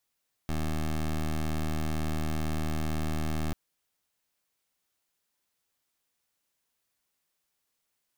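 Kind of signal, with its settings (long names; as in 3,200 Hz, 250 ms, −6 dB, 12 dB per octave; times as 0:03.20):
pulse wave 77.9 Hz, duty 16% −29.5 dBFS 3.04 s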